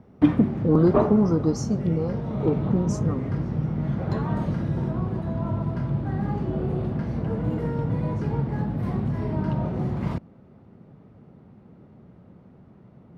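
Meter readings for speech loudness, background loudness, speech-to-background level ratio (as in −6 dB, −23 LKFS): −24.5 LKFS, −26.5 LKFS, 2.0 dB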